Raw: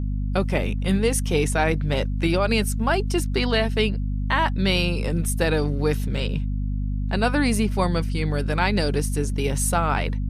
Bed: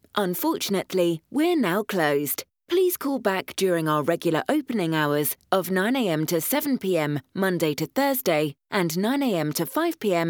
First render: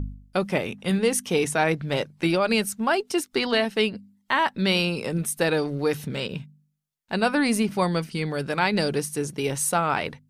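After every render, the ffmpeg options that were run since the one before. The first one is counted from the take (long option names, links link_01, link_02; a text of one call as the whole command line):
ffmpeg -i in.wav -af "bandreject=frequency=50:width_type=h:width=4,bandreject=frequency=100:width_type=h:width=4,bandreject=frequency=150:width_type=h:width=4,bandreject=frequency=200:width_type=h:width=4,bandreject=frequency=250:width_type=h:width=4" out.wav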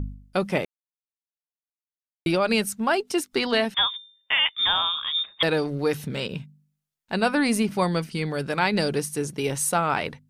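ffmpeg -i in.wav -filter_complex "[0:a]asettb=1/sr,asplit=3[link_01][link_02][link_03];[link_01]atrim=end=3.744[link_04];[link_02]atrim=start=3.74:end=5.43,asetpts=PTS-STARTPTS,afade=type=in:duration=0.004:curve=qsin,afade=type=out:start_time=1.686:duration=0.004:curve=qsin,lowpass=frequency=3200:width_type=q:width=0.5098,lowpass=frequency=3200:width_type=q:width=0.6013,lowpass=frequency=3200:width_type=q:width=0.9,lowpass=frequency=3200:width_type=q:width=2.563,afreqshift=-3800[link_05];[link_03]atrim=start=5.426[link_06];[link_04][link_05]acrossfade=duration=0.004:curve1=hsin:curve2=qsin[link_07];[link_07][link_06]acrossfade=duration=0.004:curve1=qsin:curve2=hsin,asplit=3[link_08][link_09][link_10];[link_08]atrim=end=0.65,asetpts=PTS-STARTPTS,afade=type=out:start_time=0.646:duration=0.004:curve=hsin[link_11];[link_09]atrim=start=0.65:end=2.26,asetpts=PTS-STARTPTS,volume=0[link_12];[link_10]atrim=start=2.26,asetpts=PTS-STARTPTS,afade=type=in:duration=0.004:curve=hsin[link_13];[link_11][link_12][link_13]concat=n=3:v=0:a=1" out.wav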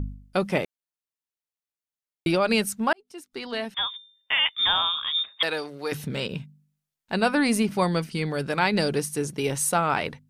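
ffmpeg -i in.wav -filter_complex "[0:a]asettb=1/sr,asplit=3[link_01][link_02][link_03];[link_01]atrim=end=5.284[link_04];[link_02]atrim=start=5.28:end=5.92,asetpts=PTS-STARTPTS,afade=type=in:duration=0.004:curve=qsin,afade=type=out:start_time=0.636:duration=0.004:curve=qsin,highpass=frequency=940:poles=1[link_05];[link_03]atrim=start=5.916[link_06];[link_04][link_05]acrossfade=duration=0.004:curve1=hsin:curve2=qsin[link_07];[link_07][link_06]acrossfade=duration=0.004:curve1=qsin:curve2=hsin,asplit=2[link_08][link_09];[link_08]atrim=end=2.93,asetpts=PTS-STARTPTS,afade=type=out:start_time=2.926:duration=0.004:curve=hsin[link_10];[link_09]atrim=start=2.93,asetpts=PTS-STARTPTS,afade=type=in:duration=1.64[link_11];[link_10][link_11]concat=n=2:v=0:a=1" out.wav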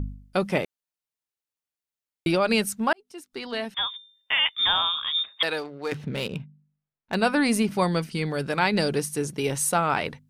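ffmpeg -i in.wav -filter_complex "[0:a]asettb=1/sr,asplit=3[link_01][link_02][link_03];[link_01]atrim=end=5.594[link_04];[link_02]atrim=start=5.59:end=7.15,asetpts=PTS-STARTPTS,afade=type=in:duration=0.004:curve=qsin,afade=type=out:start_time=1.556:duration=0.004:curve=qsin,adynamicsmooth=sensitivity=7:basefreq=2100[link_05];[link_03]atrim=start=7.146[link_06];[link_04][link_05]acrossfade=duration=0.004:curve1=hsin:curve2=qsin[link_07];[link_07][link_06]acrossfade=duration=0.004:curve1=qsin:curve2=hsin" out.wav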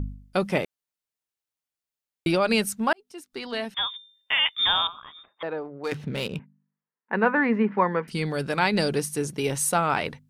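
ffmpeg -i in.wav -filter_complex "[0:a]asettb=1/sr,asplit=3[link_01][link_02][link_03];[link_01]atrim=end=4.874[link_04];[link_02]atrim=start=4.87:end=5.84,asetpts=PTS-STARTPTS,afade=type=in:duration=0.004:curve=qsin,afade=type=out:start_time=0.966:duration=0.004:curve=qsin,lowpass=1000[link_05];[link_03]atrim=start=5.836[link_06];[link_04][link_05]acrossfade=duration=0.004:curve1=hsin:curve2=qsin[link_07];[link_07][link_06]acrossfade=duration=0.004:curve1=qsin:curve2=hsin,asettb=1/sr,asplit=3[link_08][link_09][link_10];[link_08]atrim=end=6.394[link_11];[link_09]atrim=start=6.39:end=8.08,asetpts=PTS-STARTPTS,afade=type=in:duration=0.004:curve=qsin,afade=type=out:start_time=1.686:duration=0.004:curve=qsin,highpass=frequency=210:width=0.5412,highpass=frequency=210:width=1.3066,equalizer=frequency=210:width_type=q:width=4:gain=4,equalizer=frequency=310:width_type=q:width=4:gain=-5,equalizer=frequency=460:width_type=q:width=4:gain=5,equalizer=frequency=660:width_type=q:width=4:gain=-6,equalizer=frequency=970:width_type=q:width=4:gain=7,equalizer=frequency=1800:width_type=q:width=4:gain=7,lowpass=frequency=2100:width=0.5412,lowpass=frequency=2100:width=1.3066[link_12];[link_10]atrim=start=8.076[link_13];[link_11][link_12]acrossfade=duration=0.004:curve1=hsin:curve2=qsin[link_14];[link_14][link_13]acrossfade=duration=0.004:curve1=qsin:curve2=hsin" out.wav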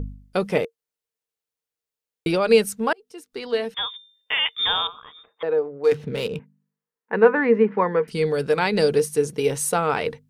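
ffmpeg -i in.wav -af "equalizer=frequency=460:width=7.9:gain=15" out.wav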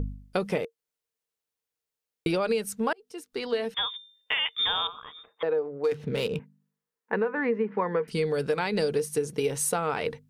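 ffmpeg -i in.wav -af "alimiter=limit=-9.5dB:level=0:latency=1:release=349,acompressor=threshold=-24dB:ratio=4" out.wav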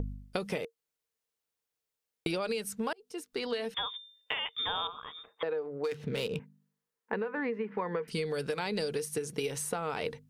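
ffmpeg -i in.wav -filter_complex "[0:a]acrossover=split=1300|2700[link_01][link_02][link_03];[link_01]acompressor=threshold=-32dB:ratio=4[link_04];[link_02]acompressor=threshold=-45dB:ratio=4[link_05];[link_03]acompressor=threshold=-37dB:ratio=4[link_06];[link_04][link_05][link_06]amix=inputs=3:normalize=0" out.wav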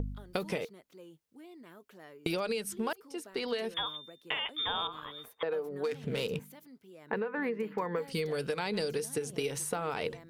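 ffmpeg -i in.wav -i bed.wav -filter_complex "[1:a]volume=-30dB[link_01];[0:a][link_01]amix=inputs=2:normalize=0" out.wav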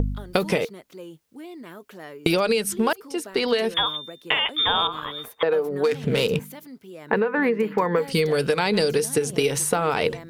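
ffmpeg -i in.wav -af "volume=12dB" out.wav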